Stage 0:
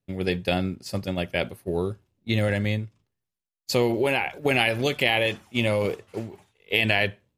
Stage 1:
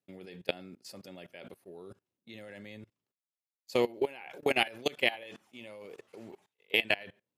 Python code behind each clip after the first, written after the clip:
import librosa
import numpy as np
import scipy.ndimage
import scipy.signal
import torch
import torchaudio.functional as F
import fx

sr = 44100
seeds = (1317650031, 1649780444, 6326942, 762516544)

y = scipy.signal.sosfilt(scipy.signal.butter(2, 230.0, 'highpass', fs=sr, output='sos'), x)
y = fx.level_steps(y, sr, step_db=22)
y = y * 10.0 ** (-3.0 / 20.0)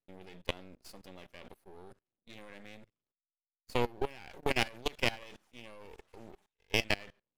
y = np.maximum(x, 0.0)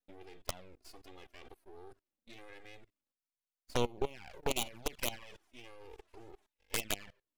y = fx.self_delay(x, sr, depth_ms=0.61)
y = fx.env_flanger(y, sr, rest_ms=4.0, full_db=-31.0)
y = y * 10.0 ** (1.0 / 20.0)